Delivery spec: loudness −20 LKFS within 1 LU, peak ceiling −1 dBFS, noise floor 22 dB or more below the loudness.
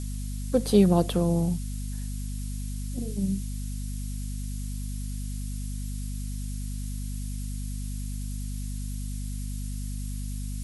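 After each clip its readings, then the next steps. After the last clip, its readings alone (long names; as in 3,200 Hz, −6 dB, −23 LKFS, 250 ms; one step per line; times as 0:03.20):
mains hum 50 Hz; hum harmonics up to 250 Hz; level of the hum −30 dBFS; background noise floor −33 dBFS; target noise floor −53 dBFS; integrated loudness −30.5 LKFS; sample peak −8.5 dBFS; target loudness −20.0 LKFS
→ mains-hum notches 50/100/150/200/250 Hz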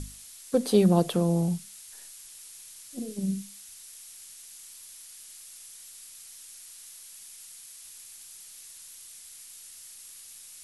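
mains hum none found; background noise floor −48 dBFS; target noise floor −49 dBFS
→ broadband denoise 6 dB, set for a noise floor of −48 dBFS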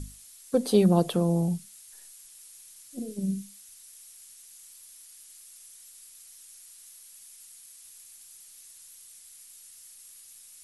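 background noise floor −51 dBFS; integrated loudness −26.0 LKFS; sample peak −9.0 dBFS; target loudness −20.0 LKFS
→ level +6 dB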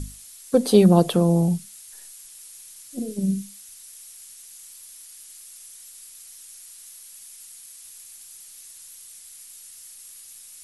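integrated loudness −20.0 LKFS; sample peak −3.0 dBFS; background noise floor −45 dBFS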